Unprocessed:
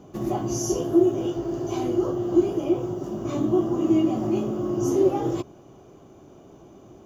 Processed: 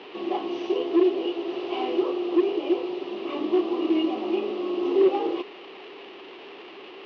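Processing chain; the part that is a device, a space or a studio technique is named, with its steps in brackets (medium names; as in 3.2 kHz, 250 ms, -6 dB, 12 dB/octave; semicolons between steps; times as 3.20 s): digital answering machine (band-pass 300–3100 Hz; one-bit delta coder 32 kbps, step -38.5 dBFS; cabinet simulation 370–3800 Hz, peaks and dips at 420 Hz +5 dB, 620 Hz -8 dB, 1.5 kHz -8 dB, 2.8 kHz +9 dB); 1.43–2.02 s: doubling 46 ms -3 dB; trim +3 dB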